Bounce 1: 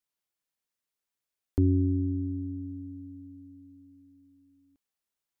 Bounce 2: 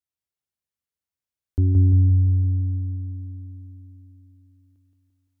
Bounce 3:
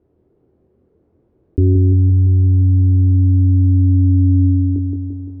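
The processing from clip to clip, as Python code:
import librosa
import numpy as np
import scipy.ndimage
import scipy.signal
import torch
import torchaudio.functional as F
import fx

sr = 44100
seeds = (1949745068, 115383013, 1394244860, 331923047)

y1 = fx.peak_eq(x, sr, hz=74.0, db=14.5, octaves=1.7)
y1 = fx.rider(y1, sr, range_db=3, speed_s=2.0)
y1 = fx.echo_feedback(y1, sr, ms=172, feedback_pct=59, wet_db=-3.0)
y1 = y1 * librosa.db_to_amplitude(-4.5)
y2 = fx.lowpass_res(y1, sr, hz=380.0, q=3.4)
y2 = fx.doubler(y2, sr, ms=24.0, db=-6.5)
y2 = fx.env_flatten(y2, sr, amount_pct=100)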